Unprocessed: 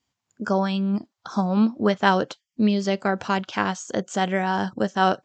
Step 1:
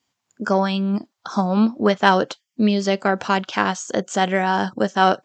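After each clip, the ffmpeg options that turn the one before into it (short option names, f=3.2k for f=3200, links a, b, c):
-af "acontrast=23,highpass=f=190:p=1"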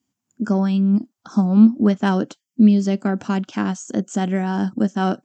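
-af "equalizer=f=250:t=o:w=1:g=9,equalizer=f=500:t=o:w=1:g=-8,equalizer=f=1k:t=o:w=1:g=-7,equalizer=f=2k:t=o:w=1:g=-7,equalizer=f=4k:t=o:w=1:g=-10"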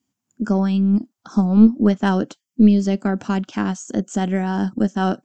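-af "aeval=exprs='0.668*(cos(1*acos(clip(val(0)/0.668,-1,1)))-cos(1*PI/2))+0.075*(cos(2*acos(clip(val(0)/0.668,-1,1)))-cos(2*PI/2))':c=same"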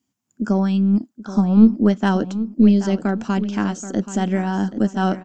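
-filter_complex "[0:a]asplit=2[a][b];[b]adelay=779,lowpass=f=5k:p=1,volume=-13dB,asplit=2[c][d];[d]adelay=779,lowpass=f=5k:p=1,volume=0.37,asplit=2[e][f];[f]adelay=779,lowpass=f=5k:p=1,volume=0.37,asplit=2[g][h];[h]adelay=779,lowpass=f=5k:p=1,volume=0.37[i];[a][c][e][g][i]amix=inputs=5:normalize=0"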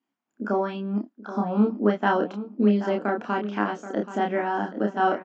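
-filter_complex "[0:a]highpass=390,lowpass=2.2k,asplit=2[a][b];[b]adelay=29,volume=-3dB[c];[a][c]amix=inputs=2:normalize=0"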